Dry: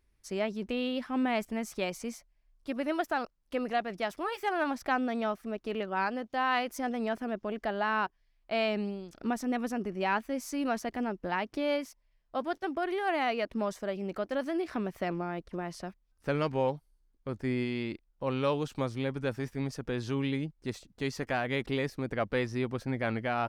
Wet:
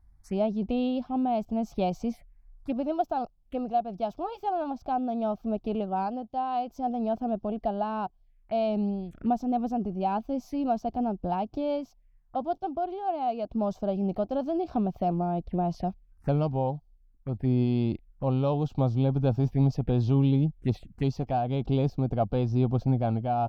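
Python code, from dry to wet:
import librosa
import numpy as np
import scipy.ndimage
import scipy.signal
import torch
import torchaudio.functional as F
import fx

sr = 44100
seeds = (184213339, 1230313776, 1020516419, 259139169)

y = fx.peak_eq(x, sr, hz=740.0, db=14.0, octaves=0.51)
y = fx.env_phaser(y, sr, low_hz=470.0, high_hz=1900.0, full_db=-29.5)
y = fx.rider(y, sr, range_db=5, speed_s=0.5)
y = fx.bass_treble(y, sr, bass_db=14, treble_db=-6)
y = F.gain(torch.from_numpy(y), -3.5).numpy()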